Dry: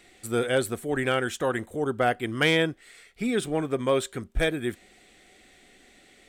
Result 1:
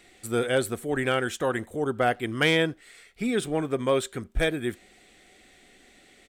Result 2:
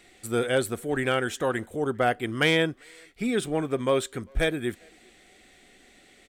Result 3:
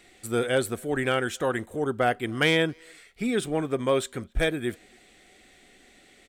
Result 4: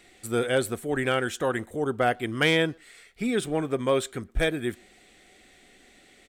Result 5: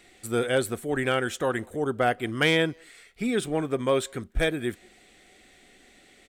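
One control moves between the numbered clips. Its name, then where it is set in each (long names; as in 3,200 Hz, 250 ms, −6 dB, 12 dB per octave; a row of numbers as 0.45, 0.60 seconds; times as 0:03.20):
far-end echo of a speakerphone, delay time: 80, 400, 270, 120, 180 milliseconds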